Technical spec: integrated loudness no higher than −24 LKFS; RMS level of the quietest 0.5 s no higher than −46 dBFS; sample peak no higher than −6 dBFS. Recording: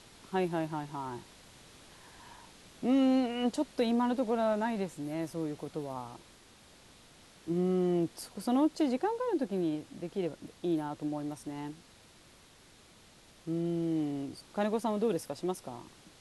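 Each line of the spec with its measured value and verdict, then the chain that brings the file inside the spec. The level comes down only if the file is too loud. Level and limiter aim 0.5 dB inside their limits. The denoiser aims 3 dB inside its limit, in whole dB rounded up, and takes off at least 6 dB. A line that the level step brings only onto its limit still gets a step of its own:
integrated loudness −33.0 LKFS: in spec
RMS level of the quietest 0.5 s −59 dBFS: in spec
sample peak −17.5 dBFS: in spec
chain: no processing needed

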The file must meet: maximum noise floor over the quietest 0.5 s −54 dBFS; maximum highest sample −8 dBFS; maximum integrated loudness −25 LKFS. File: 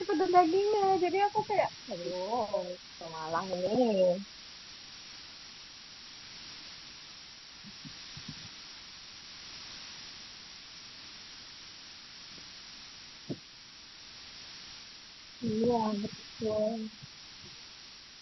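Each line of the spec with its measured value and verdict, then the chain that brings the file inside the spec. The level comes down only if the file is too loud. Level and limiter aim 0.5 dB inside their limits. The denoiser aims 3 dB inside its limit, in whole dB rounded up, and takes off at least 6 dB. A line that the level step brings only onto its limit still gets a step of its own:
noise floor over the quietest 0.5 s −52 dBFS: out of spec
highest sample −11.0 dBFS: in spec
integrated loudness −32.5 LKFS: in spec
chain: broadband denoise 6 dB, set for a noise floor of −52 dBFS

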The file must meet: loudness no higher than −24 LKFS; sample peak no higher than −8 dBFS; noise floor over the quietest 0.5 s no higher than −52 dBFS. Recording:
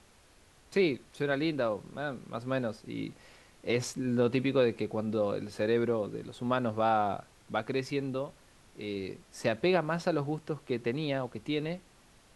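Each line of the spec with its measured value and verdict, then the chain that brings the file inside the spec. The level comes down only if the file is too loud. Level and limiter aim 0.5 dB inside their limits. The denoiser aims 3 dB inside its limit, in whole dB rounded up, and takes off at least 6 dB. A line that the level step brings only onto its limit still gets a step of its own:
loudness −32.0 LKFS: in spec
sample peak −14.0 dBFS: in spec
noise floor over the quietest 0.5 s −60 dBFS: in spec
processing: no processing needed

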